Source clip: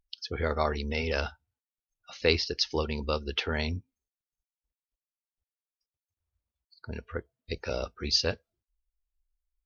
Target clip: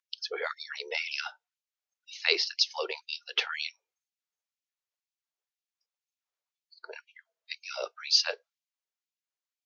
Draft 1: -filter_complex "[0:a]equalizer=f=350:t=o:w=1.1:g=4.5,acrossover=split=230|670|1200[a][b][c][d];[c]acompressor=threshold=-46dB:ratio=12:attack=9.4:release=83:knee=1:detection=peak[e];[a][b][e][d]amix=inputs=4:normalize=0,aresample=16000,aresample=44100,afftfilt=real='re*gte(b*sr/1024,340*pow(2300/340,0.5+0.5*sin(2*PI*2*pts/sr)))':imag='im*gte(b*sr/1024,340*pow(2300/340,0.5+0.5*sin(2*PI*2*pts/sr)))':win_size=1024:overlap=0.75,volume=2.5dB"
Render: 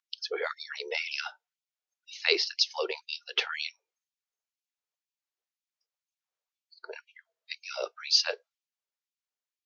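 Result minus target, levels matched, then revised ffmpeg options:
250 Hz band +4.0 dB
-filter_complex "[0:a]acrossover=split=230|670|1200[a][b][c][d];[c]acompressor=threshold=-46dB:ratio=12:attack=9.4:release=83:knee=1:detection=peak[e];[a][b][e][d]amix=inputs=4:normalize=0,aresample=16000,aresample=44100,afftfilt=real='re*gte(b*sr/1024,340*pow(2300/340,0.5+0.5*sin(2*PI*2*pts/sr)))':imag='im*gte(b*sr/1024,340*pow(2300/340,0.5+0.5*sin(2*PI*2*pts/sr)))':win_size=1024:overlap=0.75,volume=2.5dB"

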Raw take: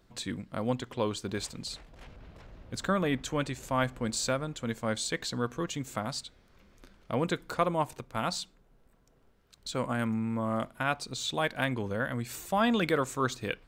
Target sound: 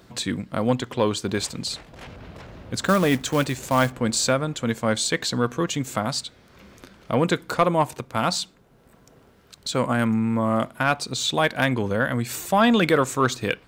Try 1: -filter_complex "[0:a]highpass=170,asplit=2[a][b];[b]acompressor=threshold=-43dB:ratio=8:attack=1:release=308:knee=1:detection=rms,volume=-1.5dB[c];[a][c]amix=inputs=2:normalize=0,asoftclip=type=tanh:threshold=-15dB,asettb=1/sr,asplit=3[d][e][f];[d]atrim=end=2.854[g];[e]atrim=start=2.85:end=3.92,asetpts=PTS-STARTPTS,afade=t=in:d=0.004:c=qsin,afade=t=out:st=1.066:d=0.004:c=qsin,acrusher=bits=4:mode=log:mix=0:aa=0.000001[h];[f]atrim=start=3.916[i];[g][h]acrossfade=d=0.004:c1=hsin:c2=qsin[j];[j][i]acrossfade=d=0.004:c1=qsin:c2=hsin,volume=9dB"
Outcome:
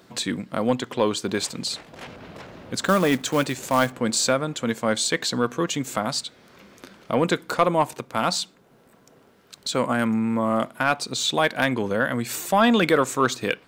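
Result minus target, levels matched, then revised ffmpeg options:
compressor: peak gain reduction -8.5 dB; 125 Hz band -4.5 dB
-filter_complex "[0:a]highpass=76,asplit=2[a][b];[b]acompressor=threshold=-53dB:ratio=8:attack=1:release=308:knee=1:detection=rms,volume=-1.5dB[c];[a][c]amix=inputs=2:normalize=0,asoftclip=type=tanh:threshold=-15dB,asettb=1/sr,asplit=3[d][e][f];[d]atrim=end=2.854[g];[e]atrim=start=2.85:end=3.92,asetpts=PTS-STARTPTS,afade=t=in:d=0.004:c=qsin,afade=t=out:st=1.066:d=0.004:c=qsin,acrusher=bits=4:mode=log:mix=0:aa=0.000001[h];[f]atrim=start=3.916[i];[g][h]acrossfade=d=0.004:c1=hsin:c2=qsin[j];[j][i]acrossfade=d=0.004:c1=qsin:c2=hsin,volume=9dB"

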